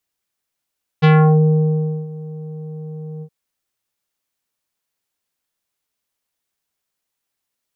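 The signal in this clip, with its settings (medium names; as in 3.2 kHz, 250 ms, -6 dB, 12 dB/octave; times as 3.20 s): synth note square D#3 24 dB/octave, low-pass 520 Hz, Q 0.99, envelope 3 oct, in 0.37 s, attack 21 ms, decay 1.03 s, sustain -21 dB, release 0.07 s, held 2.20 s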